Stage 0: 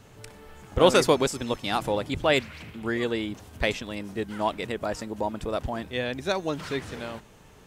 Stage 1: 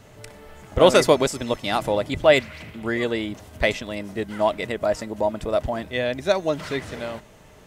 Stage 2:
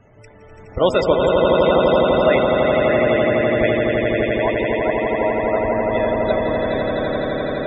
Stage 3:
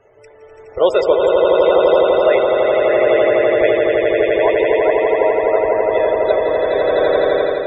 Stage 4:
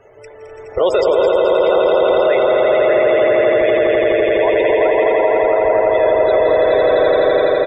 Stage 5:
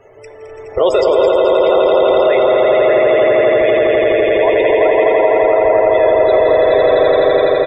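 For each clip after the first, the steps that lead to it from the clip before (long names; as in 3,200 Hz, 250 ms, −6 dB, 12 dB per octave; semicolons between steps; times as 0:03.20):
hollow resonant body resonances 620/2,000 Hz, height 9 dB; level +2.5 dB
echo that builds up and dies away 84 ms, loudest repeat 8, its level −4 dB; spectral peaks only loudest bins 64; level −2 dB
low shelf with overshoot 310 Hz −9.5 dB, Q 3; automatic gain control; level −1 dB
brickwall limiter −11.5 dBFS, peak gain reduction 9.5 dB; on a send: repeating echo 214 ms, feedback 50%, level −12 dB; on the sum: level +5.5 dB
notch filter 1,500 Hz, Q 9.4; on a send at −14 dB: convolution reverb, pre-delay 3 ms; on the sum: level +2 dB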